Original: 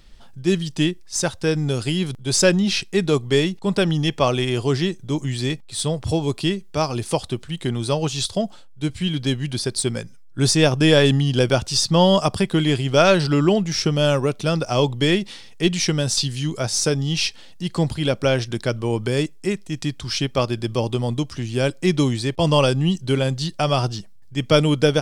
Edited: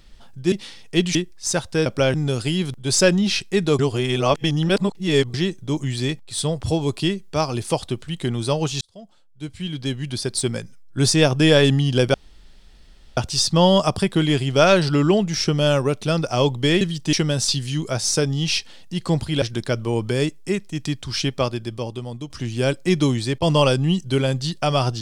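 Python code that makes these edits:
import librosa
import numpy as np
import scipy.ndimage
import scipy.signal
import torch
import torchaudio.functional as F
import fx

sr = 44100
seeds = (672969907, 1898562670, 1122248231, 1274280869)

y = fx.edit(x, sr, fx.swap(start_s=0.52, length_s=0.32, other_s=15.19, other_length_s=0.63),
    fx.reverse_span(start_s=3.2, length_s=1.55),
    fx.fade_in_span(start_s=8.22, length_s=1.64),
    fx.insert_room_tone(at_s=11.55, length_s=1.03),
    fx.move(start_s=18.11, length_s=0.28, to_s=1.55),
    fx.fade_out_to(start_s=20.28, length_s=0.99, curve='qua', floor_db=-9.5), tone=tone)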